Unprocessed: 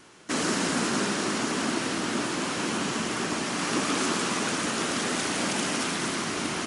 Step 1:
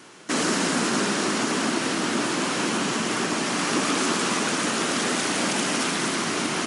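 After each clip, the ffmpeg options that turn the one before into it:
-filter_complex "[0:a]highpass=130,asplit=2[a][b];[b]alimiter=limit=-22.5dB:level=0:latency=1:release=193,volume=-1dB[c];[a][c]amix=inputs=2:normalize=0"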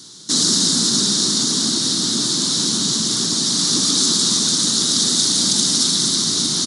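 -af "firequalizer=gain_entry='entry(130,0);entry(560,-18);entry(1200,-14);entry(2600,-21);entry(3700,9);entry(9900,2)':delay=0.05:min_phase=1,volume=7dB"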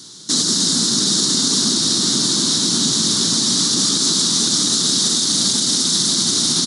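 -filter_complex "[0:a]asplit=2[a][b];[b]aecho=0:1:706:0.596[c];[a][c]amix=inputs=2:normalize=0,alimiter=level_in=7.5dB:limit=-1dB:release=50:level=0:latency=1,volume=-6dB"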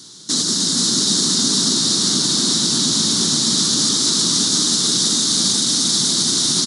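-af "aecho=1:1:479:0.631,volume=-1.5dB"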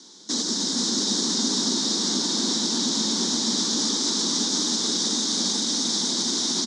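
-af "highpass=f=220:w=0.5412,highpass=f=220:w=1.3066,equalizer=f=220:t=q:w=4:g=4,equalizer=f=500:t=q:w=4:g=4,equalizer=f=880:t=q:w=4:g=6,equalizer=f=1.3k:t=q:w=4:g=-5,equalizer=f=2.8k:t=q:w=4:g=-5,equalizer=f=4.3k:t=q:w=4:g=-5,lowpass=f=6.5k:w=0.5412,lowpass=f=6.5k:w=1.3066,volume=-4dB"

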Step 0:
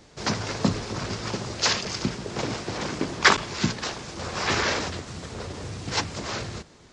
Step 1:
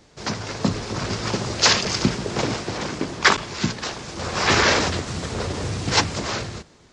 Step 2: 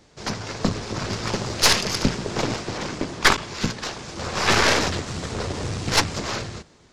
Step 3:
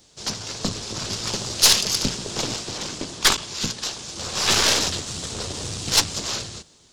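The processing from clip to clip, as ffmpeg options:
-af "dynaudnorm=f=130:g=13:m=11dB,volume=-1dB"
-af "aeval=exprs='0.841*(cos(1*acos(clip(val(0)/0.841,-1,1)))-cos(1*PI/2))+0.188*(cos(4*acos(clip(val(0)/0.841,-1,1)))-cos(4*PI/2))+0.00944*(cos(8*acos(clip(val(0)/0.841,-1,1)))-cos(8*PI/2))':c=same,volume=-1.5dB"
-af "aexciter=amount=3:drive=6.4:freq=2.9k,volume=-5dB"

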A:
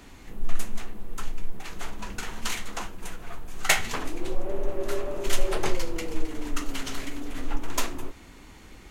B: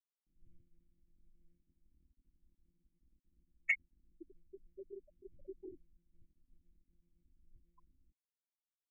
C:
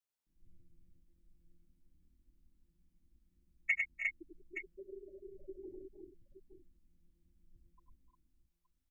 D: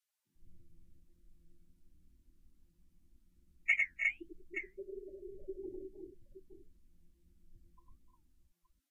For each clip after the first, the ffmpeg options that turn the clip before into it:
-filter_complex "[0:a]afftfilt=real='re*gte(hypot(re,im),0.282)':imag='im*gte(hypot(re,im),0.282)':win_size=1024:overlap=0.75,asplit=3[a][b][c];[a]bandpass=f=270:t=q:w=8,volume=0dB[d];[b]bandpass=f=2.29k:t=q:w=8,volume=-6dB[e];[c]bandpass=f=3.01k:t=q:w=8,volume=-9dB[f];[d][e][f]amix=inputs=3:normalize=0,volume=4dB"
-af "aecho=1:1:81|100|299|316|355|870:0.112|0.631|0.168|0.316|0.631|0.266"
-af "flanger=delay=7.8:depth=7.3:regen=-65:speed=1.6:shape=triangular,volume=8dB" -ar 44100 -c:a libvorbis -b:a 48k

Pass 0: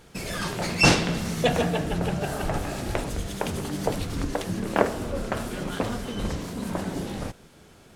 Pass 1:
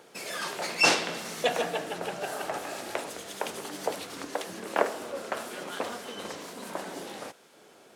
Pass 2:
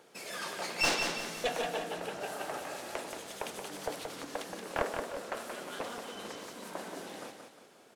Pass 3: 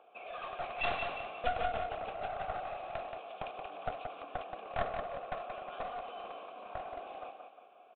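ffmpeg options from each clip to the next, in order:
-filter_complex "[0:a]highpass=440,acrossover=split=750|1000[a][b][c];[a]acompressor=mode=upward:threshold=-48dB:ratio=2.5[d];[d][b][c]amix=inputs=3:normalize=0,volume=-2dB"
-af "aeval=exprs='clip(val(0),-1,0.075)':c=same,aecho=1:1:177|354|531|708|885:0.501|0.195|0.0762|0.0297|0.0116,volume=-5.5dB"
-filter_complex "[0:a]asplit=3[a][b][c];[a]bandpass=f=730:t=q:w=8,volume=0dB[d];[b]bandpass=f=1.09k:t=q:w=8,volume=-6dB[e];[c]bandpass=f=2.44k:t=q:w=8,volume=-9dB[f];[d][e][f]amix=inputs=3:normalize=0,aresample=8000,aeval=exprs='clip(val(0),-1,0.00355)':c=same,aresample=44100,volume=9.5dB"

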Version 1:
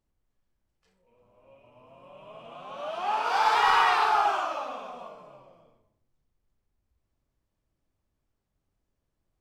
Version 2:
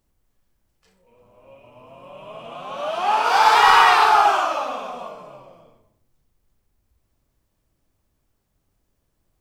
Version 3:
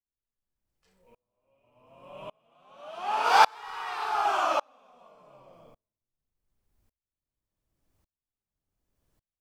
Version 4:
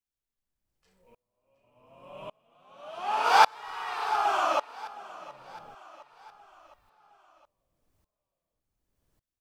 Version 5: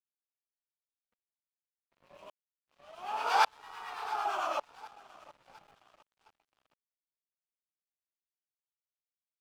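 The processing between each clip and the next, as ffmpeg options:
-af "highshelf=f=7.7k:g=7,volume=8.5dB"
-af "aeval=exprs='val(0)*pow(10,-35*if(lt(mod(-0.87*n/s,1),2*abs(-0.87)/1000),1-mod(-0.87*n/s,1)/(2*abs(-0.87)/1000),(mod(-0.87*n/s,1)-2*abs(-0.87)/1000)/(1-2*abs(-0.87)/1000))/20)':c=same"
-af "aecho=1:1:714|1428|2142|2856:0.119|0.063|0.0334|0.0177"
-filter_complex "[0:a]acrossover=split=200|630|3000[a][b][c][d];[a]aeval=exprs='(mod(631*val(0)+1,2)-1)/631':c=same[e];[e][b][c][d]amix=inputs=4:normalize=0,acrossover=split=1000[f][g];[f]aeval=exprs='val(0)*(1-0.5/2+0.5/2*cos(2*PI*8.9*n/s))':c=same[h];[g]aeval=exprs='val(0)*(1-0.5/2-0.5/2*cos(2*PI*8.9*n/s))':c=same[i];[h][i]amix=inputs=2:normalize=0,aeval=exprs='sgn(val(0))*max(abs(val(0))-0.00251,0)':c=same,volume=-4.5dB"

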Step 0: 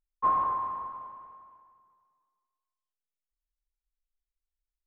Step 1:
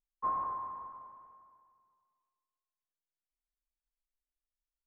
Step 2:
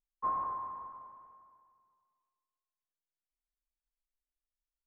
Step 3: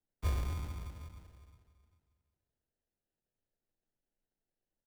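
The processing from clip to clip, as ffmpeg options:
-af "lowpass=1.9k,volume=-7.5dB"
-af anull
-filter_complex "[0:a]asplit=2[a][b];[b]adelay=400,highpass=300,lowpass=3.4k,asoftclip=type=hard:threshold=-33dB,volume=-14dB[c];[a][c]amix=inputs=2:normalize=0,acrusher=samples=38:mix=1:aa=0.000001,afreqshift=-26,volume=1dB"

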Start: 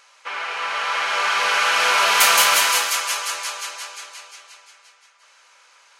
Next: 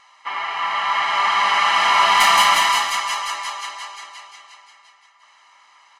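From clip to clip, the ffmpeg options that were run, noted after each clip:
-af "aemphasis=mode=reproduction:type=75kf,aecho=1:1:1:0.87,volume=2dB"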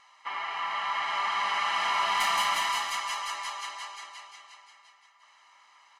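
-af "acompressor=threshold=-27dB:ratio=1.5,volume=-6.5dB"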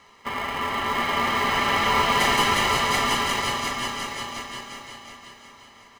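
-filter_complex "[0:a]asplit=2[a][b];[b]acrusher=samples=31:mix=1:aa=0.000001,volume=-7dB[c];[a][c]amix=inputs=2:normalize=0,aecho=1:1:731|1462|2193|2924:0.708|0.198|0.0555|0.0155,volume=4.5dB"

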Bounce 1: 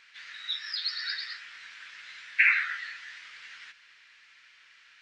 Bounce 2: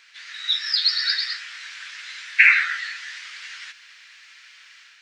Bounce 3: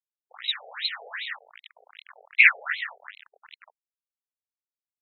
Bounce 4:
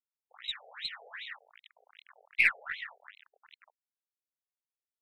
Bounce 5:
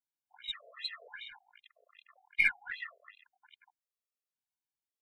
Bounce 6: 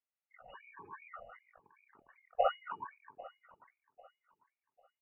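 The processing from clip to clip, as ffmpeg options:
-filter_complex "[0:a]bass=f=250:g=-7,treble=f=4k:g=7,acrossover=split=860[a][b];[b]dynaudnorm=f=240:g=3:m=5dB[c];[a][c]amix=inputs=2:normalize=0,volume=3dB"
-af "aresample=11025,acrusher=bits=4:mix=0:aa=0.000001,aresample=44100,afftfilt=real='re*between(b*sr/1024,550*pow(3000/550,0.5+0.5*sin(2*PI*2.6*pts/sr))/1.41,550*pow(3000/550,0.5+0.5*sin(2*PI*2.6*pts/sr))*1.41)':imag='im*between(b*sr/1024,550*pow(3000/550,0.5+0.5*sin(2*PI*2.6*pts/sr))/1.41,550*pow(3000/550,0.5+0.5*sin(2*PI*2.6*pts/sr))*1.41)':win_size=1024:overlap=0.75"
-af "aeval=exprs='0.75*(cos(1*acos(clip(val(0)/0.75,-1,1)))-cos(1*PI/2))+0.0168*(cos(4*acos(clip(val(0)/0.75,-1,1)))-cos(4*PI/2))+0.0266*(cos(6*acos(clip(val(0)/0.75,-1,1)))-cos(6*PI/2))':c=same,volume=-9dB"
-af "afftfilt=real='re*gt(sin(2*PI*0.92*pts/sr)*(1-2*mod(floor(b*sr/1024/350),2)),0)':imag='im*gt(sin(2*PI*0.92*pts/sr)*(1-2*mod(floor(b*sr/1024/350),2)),0)':win_size=1024:overlap=0.75"
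-af "lowpass=f=2.5k:t=q:w=0.5098,lowpass=f=2.5k:t=q:w=0.6013,lowpass=f=2.5k:t=q:w=0.9,lowpass=f=2.5k:t=q:w=2.563,afreqshift=-2900,aecho=1:1:796|1592|2388:0.1|0.032|0.0102,volume=-1.5dB"

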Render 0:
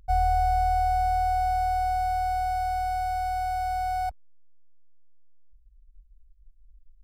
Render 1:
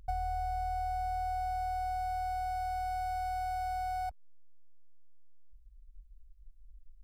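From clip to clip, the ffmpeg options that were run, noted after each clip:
-af "acompressor=threshold=-34dB:ratio=4"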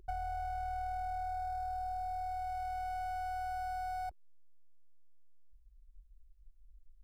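-af "equalizer=f=370:t=o:w=0.68:g=15,aeval=exprs='(tanh(20*val(0)+0.4)-tanh(0.4))/20':c=same,volume=-3.5dB"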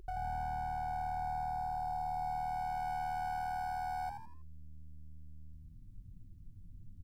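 -filter_complex "[0:a]alimiter=level_in=13.5dB:limit=-24dB:level=0:latency=1,volume=-13.5dB,asplit=2[a][b];[b]asplit=4[c][d][e][f];[c]adelay=81,afreqshift=77,volume=-6.5dB[g];[d]adelay=162,afreqshift=154,volume=-15.1dB[h];[e]adelay=243,afreqshift=231,volume=-23.8dB[i];[f]adelay=324,afreqshift=308,volume=-32.4dB[j];[g][h][i][j]amix=inputs=4:normalize=0[k];[a][k]amix=inputs=2:normalize=0,volume=5dB"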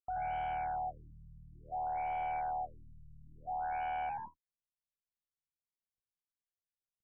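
-filter_complex "[0:a]asplit=2[a][b];[b]highpass=f=720:p=1,volume=21dB,asoftclip=type=tanh:threshold=-28.5dB[c];[a][c]amix=inputs=2:normalize=0,lowpass=f=3.1k:p=1,volume=-6dB,agate=range=-59dB:threshold=-43dB:ratio=16:detection=peak,afftfilt=real='re*lt(b*sr/1024,210*pow(3400/210,0.5+0.5*sin(2*PI*0.57*pts/sr)))':imag='im*lt(b*sr/1024,210*pow(3400/210,0.5+0.5*sin(2*PI*0.57*pts/sr)))':win_size=1024:overlap=0.75,volume=-2.5dB"

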